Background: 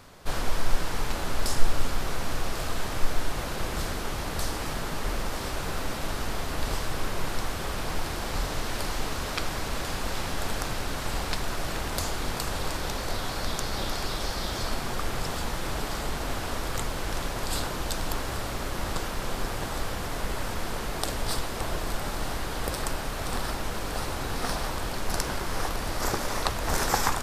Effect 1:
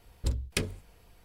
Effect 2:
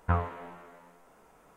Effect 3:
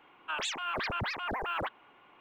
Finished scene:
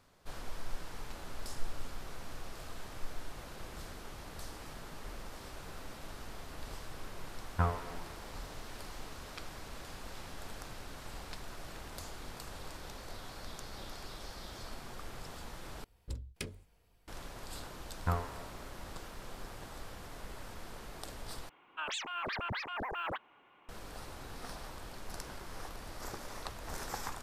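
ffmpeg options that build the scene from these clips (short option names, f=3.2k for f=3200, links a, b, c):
-filter_complex "[2:a]asplit=2[a][b];[0:a]volume=-15.5dB,asplit=3[c][d][e];[c]atrim=end=15.844[f];[1:a]atrim=end=1.24,asetpts=PTS-STARTPTS,volume=-11.5dB[g];[d]atrim=start=17.076:end=21.494[h];[3:a]atrim=end=2.2,asetpts=PTS-STARTPTS,volume=-4dB[i];[e]atrim=start=23.686[j];[a]atrim=end=1.56,asetpts=PTS-STARTPTS,volume=-3.5dB,afade=t=in:d=0.004:c=hsin,afade=t=out:st=1.556:d=0.004:c=hsin,adelay=7500[k];[b]atrim=end=1.56,asetpts=PTS-STARTPTS,volume=-5.5dB,afade=t=in:d=0.004:c=hsin,afade=t=out:st=1.556:d=0.004:c=hsin,adelay=17980[l];[f][g]acrossfade=d=0.004:c1=hsin:c2=hsin[m];[m][h]acrossfade=d=0.004:c1=hsin:c2=hsin[n];[n][i]acrossfade=d=0.004:c1=hsin:c2=hsin[o];[o][j]acrossfade=d=0.004:c1=hsin:c2=hsin[p];[p][k][l]amix=inputs=3:normalize=0"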